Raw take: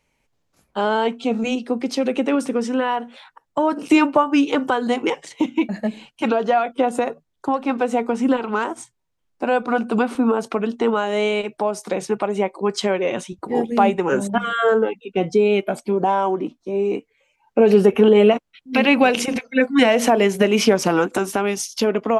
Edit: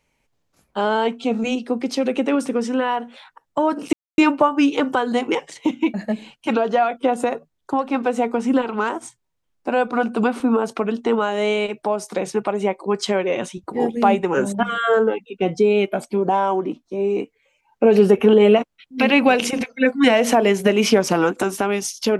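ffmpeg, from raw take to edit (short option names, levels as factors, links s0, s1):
-filter_complex "[0:a]asplit=2[s0][s1];[s0]atrim=end=3.93,asetpts=PTS-STARTPTS,afade=t=out:st=3.926:d=0.004:c=hsin,apad=pad_dur=0.25[s2];[s1]atrim=start=3.93,asetpts=PTS-STARTPTS,afade=t=in:d=0.004:c=hsin[s3];[s2][s3]concat=n=2:v=0:a=1"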